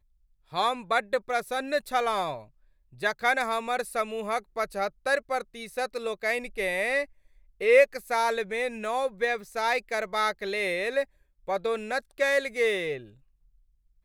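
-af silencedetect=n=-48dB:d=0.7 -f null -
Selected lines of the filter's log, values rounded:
silence_start: 13.12
silence_end: 14.04 | silence_duration: 0.92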